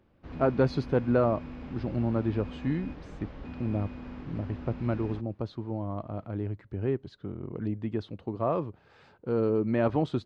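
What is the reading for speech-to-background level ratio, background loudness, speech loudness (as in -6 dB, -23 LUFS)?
11.5 dB, -42.5 LUFS, -31.0 LUFS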